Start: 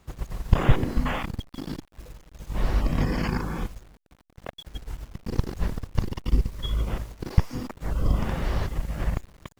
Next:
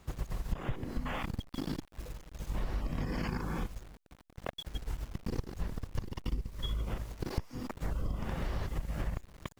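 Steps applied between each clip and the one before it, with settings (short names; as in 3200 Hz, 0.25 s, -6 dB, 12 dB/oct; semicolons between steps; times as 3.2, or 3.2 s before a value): compressor 6:1, threshold -31 dBFS, peak gain reduction 20.5 dB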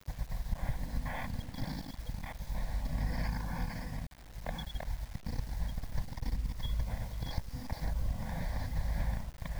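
reverse delay 0.581 s, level -3 dB; fixed phaser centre 1900 Hz, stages 8; bit-crush 9-bit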